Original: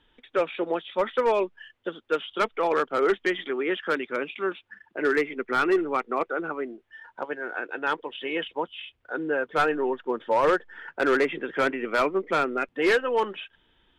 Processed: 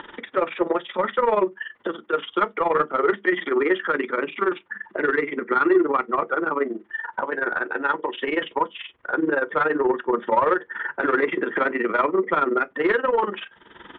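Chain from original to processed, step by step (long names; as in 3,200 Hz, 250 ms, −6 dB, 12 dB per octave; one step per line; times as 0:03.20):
high-pass filter 49 Hz
in parallel at +1.5 dB: downward compressor, threshold −32 dBFS, peak gain reduction 13 dB
on the sum: brickwall limiter −16.5 dBFS, peak gain reduction 6 dB
upward compression, threshold −34 dBFS
amplitude modulation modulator 21 Hz, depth 75%
mid-hump overdrive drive 12 dB, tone 1,600 Hz, clips at −16.5 dBFS
high-frequency loss of the air 190 metres
convolution reverb RT60 0.15 s, pre-delay 3 ms, DRR 11.5 dB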